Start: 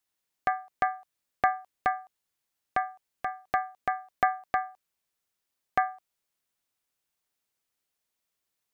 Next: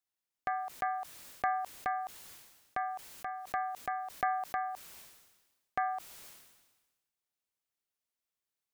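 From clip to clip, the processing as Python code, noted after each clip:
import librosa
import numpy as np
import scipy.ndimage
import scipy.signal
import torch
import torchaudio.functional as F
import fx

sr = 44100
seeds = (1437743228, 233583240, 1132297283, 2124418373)

y = fx.sustainer(x, sr, db_per_s=47.0)
y = y * librosa.db_to_amplitude(-8.5)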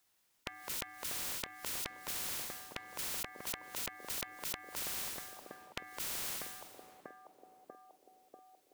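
y = fx.echo_banded(x, sr, ms=641, feedback_pct=63, hz=390.0, wet_db=-11.0)
y = fx.spectral_comp(y, sr, ratio=10.0)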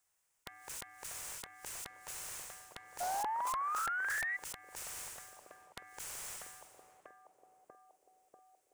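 y = fx.spec_paint(x, sr, seeds[0], shape='rise', start_s=3.0, length_s=1.37, low_hz=700.0, high_hz=2000.0, level_db=-32.0)
y = fx.graphic_eq_10(y, sr, hz=(250, 4000, 8000, 16000), db=(-12, -9, 8, -6))
y = fx.doppler_dist(y, sr, depth_ms=0.85)
y = y * librosa.db_to_amplitude(-3.0)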